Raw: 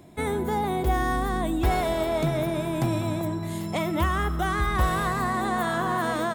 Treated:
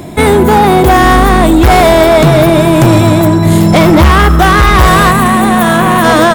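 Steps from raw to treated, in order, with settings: 0.59–1.04 s: high-pass 71 Hz 24 dB/octave; 3.45–4.11 s: bass shelf 390 Hz +5.5 dB; hard clipper -24 dBFS, distortion -10 dB; 5.11–6.04 s: graphic EQ with 31 bands 200 Hz +11 dB, 5 kHz -8 dB, 10 kHz +8 dB, 16 kHz +9 dB; loudness maximiser +25.5 dB; trim -1 dB

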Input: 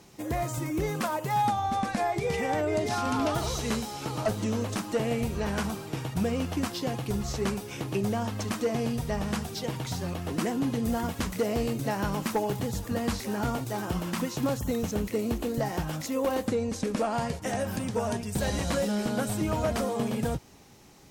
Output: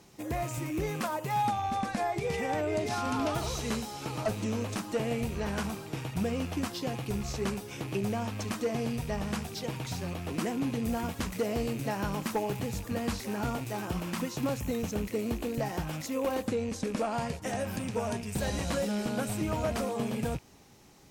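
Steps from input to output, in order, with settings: rattle on loud lows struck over -37 dBFS, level -35 dBFS; trim -3 dB

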